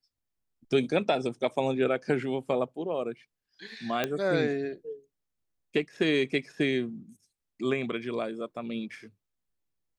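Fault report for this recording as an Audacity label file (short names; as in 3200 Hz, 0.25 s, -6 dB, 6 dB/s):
4.040000	4.040000	pop -13 dBFS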